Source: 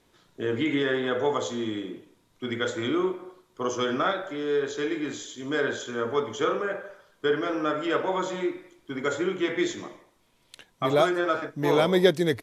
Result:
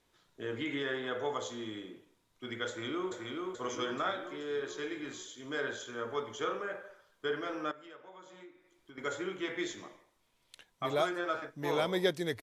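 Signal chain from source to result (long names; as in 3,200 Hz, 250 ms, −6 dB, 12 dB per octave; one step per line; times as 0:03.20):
parametric band 220 Hz −5 dB 2.7 octaves
0:02.68–0:03.12: delay throw 430 ms, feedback 60%, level −3 dB
0:07.71–0:08.98: downward compressor 4 to 1, threshold −46 dBFS, peak gain reduction 19.5 dB
level −7 dB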